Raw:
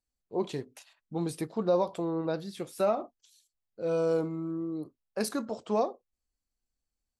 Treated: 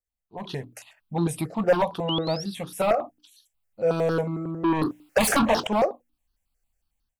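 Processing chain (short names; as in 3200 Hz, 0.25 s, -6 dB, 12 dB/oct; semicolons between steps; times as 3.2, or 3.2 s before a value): notches 60/120/180/240/300 Hz; hard clip -23.5 dBFS, distortion -15 dB; 2.08–2.44 painted sound rise 2800–5800 Hz -40 dBFS; 4.64–5.67 overdrive pedal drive 30 dB, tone 5200 Hz, clips at -20 dBFS; AGC gain up to 14 dB; step phaser 11 Hz 960–2200 Hz; gain -3 dB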